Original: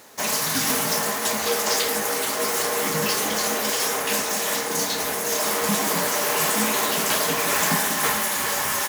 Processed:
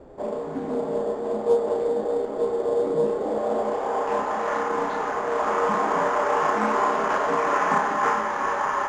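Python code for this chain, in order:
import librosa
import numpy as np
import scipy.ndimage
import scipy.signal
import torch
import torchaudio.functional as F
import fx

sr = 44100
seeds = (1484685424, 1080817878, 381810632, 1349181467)

y = scipy.signal.sosfilt(scipy.signal.butter(2, 270.0, 'highpass', fs=sr, output='sos'), x)
y = fx.high_shelf(y, sr, hz=5900.0, db=9.5)
y = fx.quant_dither(y, sr, seeds[0], bits=6, dither='triangular')
y = fx.filter_sweep_lowpass(y, sr, from_hz=500.0, to_hz=1200.0, start_s=3.1, end_s=4.52, q=1.7)
y = fx.sample_hold(y, sr, seeds[1], rate_hz=8000.0, jitter_pct=0)
y = fx.air_absorb(y, sr, metres=160.0)
y = fx.doubler(y, sr, ms=32.0, db=-4)
y = fx.doppler_dist(y, sr, depth_ms=0.15)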